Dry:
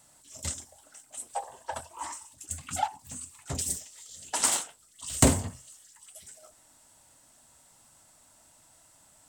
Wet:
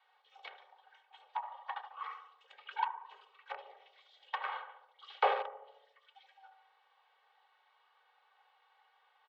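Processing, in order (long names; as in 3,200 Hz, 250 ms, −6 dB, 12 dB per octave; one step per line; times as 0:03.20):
sub-octave generator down 2 octaves, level −2 dB
tape delay 72 ms, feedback 69%, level −6 dB, low-pass 1,100 Hz
treble cut that deepens with the level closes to 1,600 Hz, closed at −27.5 dBFS
in parallel at −6.5 dB: bit reduction 4 bits
on the sum: comb filter 2.9 ms, depth 74%
single-sideband voice off tune +150 Hz 430–3,400 Hz
level −5.5 dB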